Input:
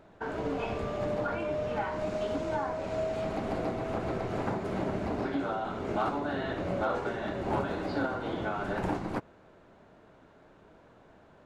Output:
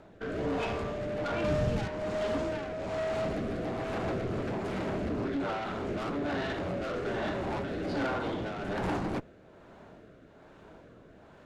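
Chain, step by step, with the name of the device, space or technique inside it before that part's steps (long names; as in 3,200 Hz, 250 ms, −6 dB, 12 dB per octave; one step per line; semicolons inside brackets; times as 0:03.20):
overdriven rotary cabinet (tube saturation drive 34 dB, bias 0.35; rotating-speaker cabinet horn 1.2 Hz)
0:01.44–0:01.88: bass and treble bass +13 dB, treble +9 dB
level +7 dB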